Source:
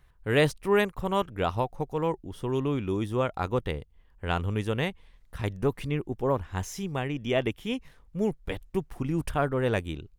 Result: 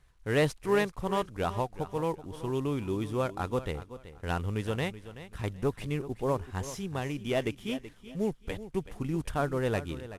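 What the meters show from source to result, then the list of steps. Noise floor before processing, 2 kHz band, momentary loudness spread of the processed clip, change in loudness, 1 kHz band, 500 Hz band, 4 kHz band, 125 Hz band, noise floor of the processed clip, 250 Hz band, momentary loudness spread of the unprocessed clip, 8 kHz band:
-59 dBFS, -3.5 dB, 10 LU, -3.0 dB, -3.0 dB, -3.0 dB, -4.0 dB, -3.0 dB, -57 dBFS, -3.0 dB, 10 LU, -1.0 dB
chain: CVSD 64 kbps; on a send: feedback echo 0.379 s, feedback 25%, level -14 dB; on the sum: gain -3 dB

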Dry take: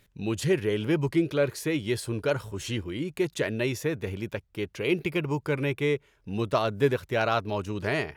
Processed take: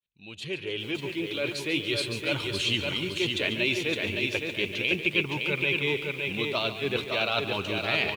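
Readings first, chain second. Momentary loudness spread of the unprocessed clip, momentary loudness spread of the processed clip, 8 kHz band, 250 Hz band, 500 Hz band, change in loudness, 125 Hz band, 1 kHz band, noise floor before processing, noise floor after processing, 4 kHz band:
8 LU, 6 LU, -1.5 dB, -4.0 dB, -4.0 dB, +1.0 dB, -6.0 dB, -3.5 dB, -65 dBFS, -41 dBFS, +10.0 dB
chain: opening faded in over 2.57 s; reverse; compressor, threshold -32 dBFS, peak gain reduction 14 dB; reverse; LPF 9500 Hz 12 dB/oct; band shelf 3100 Hz +13 dB 1.1 oct; on a send: feedback echo 0.142 s, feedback 56%, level -12 dB; on the sum: flange 0.39 Hz, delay 0.6 ms, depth 3.1 ms, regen -59%; low shelf 100 Hz -10 dB; lo-fi delay 0.563 s, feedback 35%, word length 10-bit, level -4 dB; gain +8 dB

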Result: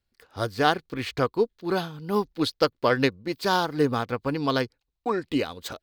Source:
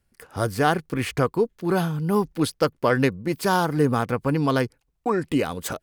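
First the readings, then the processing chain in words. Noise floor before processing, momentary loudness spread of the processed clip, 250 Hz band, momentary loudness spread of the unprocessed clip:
-73 dBFS, 9 LU, -4.0 dB, 6 LU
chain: fifteen-band EQ 160 Hz -6 dB, 4000 Hz +10 dB, 10000 Hz -9 dB; upward expander 1.5:1, over -34 dBFS

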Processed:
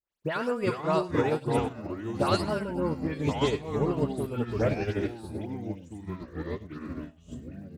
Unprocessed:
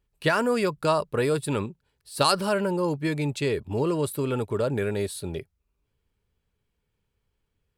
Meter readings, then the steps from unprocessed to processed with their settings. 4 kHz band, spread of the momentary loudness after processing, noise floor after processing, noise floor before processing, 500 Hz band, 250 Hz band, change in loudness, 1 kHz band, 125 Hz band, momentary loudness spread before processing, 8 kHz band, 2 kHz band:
-7.0 dB, 13 LU, -54 dBFS, -78 dBFS, -3.0 dB, -1.0 dB, -4.0 dB, -3.0 dB, -1.0 dB, 8 LU, -11.0 dB, -5.5 dB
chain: high shelf 5900 Hz -11 dB; in parallel at -2 dB: limiter -18 dBFS, peak gain reduction 9 dB; on the sum: echoes that change speed 0.326 s, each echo -5 st, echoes 3; crackle 120/s -37 dBFS; dispersion highs, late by 0.11 s, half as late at 2600 Hz; on a send: echo 0.101 s -12 dB; on the sum: upward expander 2.5:1, over -34 dBFS; gain -5 dB

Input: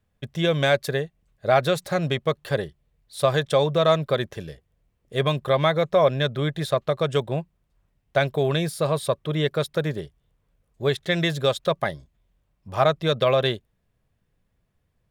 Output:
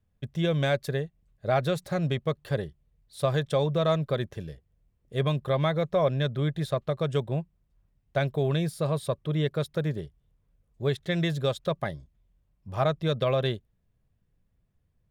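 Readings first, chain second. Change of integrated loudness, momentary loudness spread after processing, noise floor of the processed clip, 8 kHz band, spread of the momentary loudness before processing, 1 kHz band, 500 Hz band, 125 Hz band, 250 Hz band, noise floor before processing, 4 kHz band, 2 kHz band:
-5.0 dB, 11 LU, -73 dBFS, -8.0 dB, 11 LU, -7.0 dB, -6.0 dB, -1.0 dB, -2.0 dB, -72 dBFS, -8.0 dB, -8.0 dB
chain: low shelf 290 Hz +9 dB; gain -8 dB

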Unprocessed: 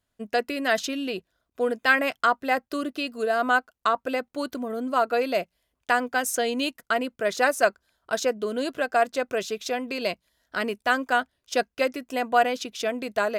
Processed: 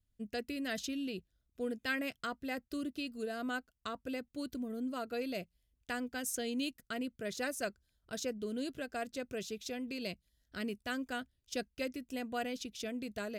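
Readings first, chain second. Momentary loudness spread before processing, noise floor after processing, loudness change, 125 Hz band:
9 LU, -81 dBFS, -14.0 dB, n/a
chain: passive tone stack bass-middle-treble 10-0-1; gain +11.5 dB

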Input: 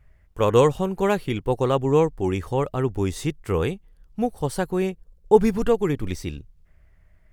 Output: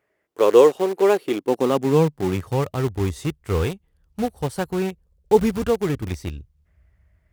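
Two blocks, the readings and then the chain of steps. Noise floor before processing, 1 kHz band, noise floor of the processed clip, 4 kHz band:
-57 dBFS, 0.0 dB, -69 dBFS, +1.5 dB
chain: in parallel at -7 dB: bit-crush 4-bit; on the sum: high-pass sweep 370 Hz -> 65 Hz, 1.2–2.98; gain -4 dB

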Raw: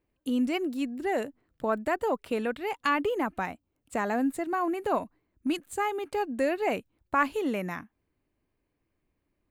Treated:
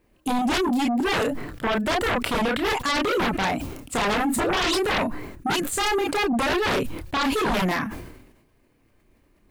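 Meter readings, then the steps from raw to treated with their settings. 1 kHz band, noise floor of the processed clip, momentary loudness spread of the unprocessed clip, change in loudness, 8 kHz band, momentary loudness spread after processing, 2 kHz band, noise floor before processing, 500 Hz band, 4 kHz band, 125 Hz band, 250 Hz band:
+5.5 dB, -63 dBFS, 9 LU, +6.0 dB, +15.0 dB, 6 LU, +8.5 dB, -80 dBFS, +4.5 dB, +16.0 dB, +13.0 dB, +5.5 dB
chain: dynamic EQ 240 Hz, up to +4 dB, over -41 dBFS, Q 6.8; painted sound rise, 4.36–4.76, 210–5400 Hz -35 dBFS; limiter -21 dBFS, peak gain reduction 9.5 dB; chorus voices 4, 0.25 Hz, delay 30 ms, depth 4.5 ms; sine folder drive 14 dB, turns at -19.5 dBFS; sustainer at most 56 dB/s

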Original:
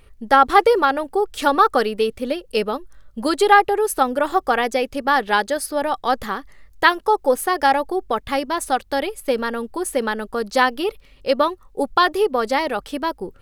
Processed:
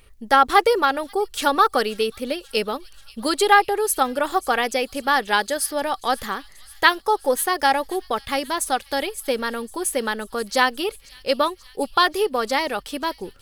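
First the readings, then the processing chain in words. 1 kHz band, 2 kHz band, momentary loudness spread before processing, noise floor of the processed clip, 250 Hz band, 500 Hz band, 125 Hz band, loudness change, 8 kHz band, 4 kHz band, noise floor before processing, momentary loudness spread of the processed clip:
-2.5 dB, -0.5 dB, 12 LU, -49 dBFS, -3.5 dB, -3.0 dB, n/a, -2.0 dB, +4.0 dB, +2.0 dB, -49 dBFS, 11 LU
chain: high shelf 2300 Hz +8 dB; on a send: thin delay 0.534 s, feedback 70%, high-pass 3400 Hz, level -18 dB; on the sum: gain -3.5 dB

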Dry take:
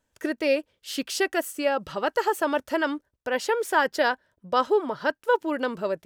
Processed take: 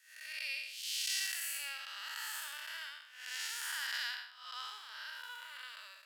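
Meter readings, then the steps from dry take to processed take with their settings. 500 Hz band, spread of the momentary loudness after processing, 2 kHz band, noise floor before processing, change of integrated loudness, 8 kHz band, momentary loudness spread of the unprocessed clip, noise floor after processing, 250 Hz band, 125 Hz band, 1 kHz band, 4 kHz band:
under -40 dB, 12 LU, -11.5 dB, -79 dBFS, -13.5 dB, -2.0 dB, 7 LU, -57 dBFS, under -40 dB, n/a, -23.5 dB, -3.0 dB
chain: time blur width 0.263 s; Bessel high-pass 2700 Hz, order 4; gain +4.5 dB

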